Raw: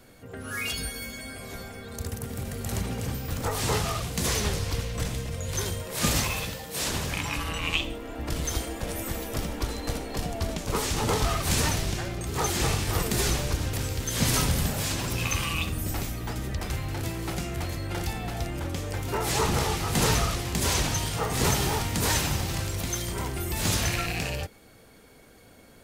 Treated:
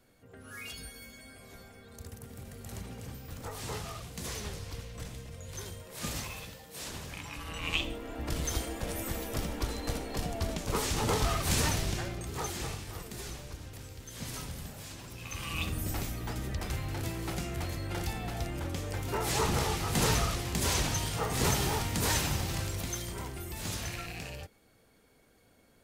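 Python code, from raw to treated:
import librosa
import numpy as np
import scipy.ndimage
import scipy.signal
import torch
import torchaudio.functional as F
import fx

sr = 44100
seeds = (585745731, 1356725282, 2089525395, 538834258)

y = fx.gain(x, sr, db=fx.line((7.35, -12.0), (7.79, -3.5), (12.01, -3.5), (13.01, -16.0), (15.21, -16.0), (15.64, -4.0), (22.65, -4.0), (23.66, -11.0)))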